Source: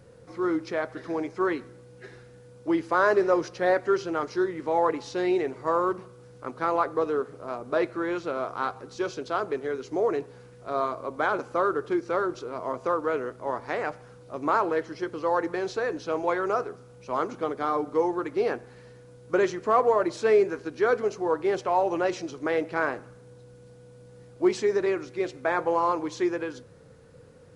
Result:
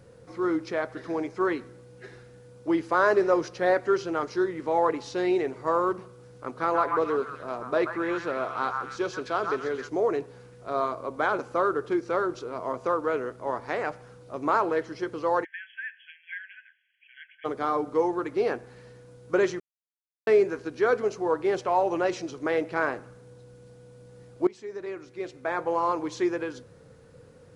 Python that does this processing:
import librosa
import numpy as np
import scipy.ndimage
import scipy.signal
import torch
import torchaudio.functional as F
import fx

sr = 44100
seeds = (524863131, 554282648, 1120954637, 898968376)

y = fx.echo_stepped(x, sr, ms=132, hz=1300.0, octaves=0.7, feedback_pct=70, wet_db=-1.5, at=(6.47, 9.89))
y = fx.brickwall_bandpass(y, sr, low_hz=1500.0, high_hz=3400.0, at=(15.43, 17.44), fade=0.02)
y = fx.edit(y, sr, fx.silence(start_s=19.6, length_s=0.67),
    fx.fade_in_from(start_s=24.47, length_s=1.64, floor_db=-21.0), tone=tone)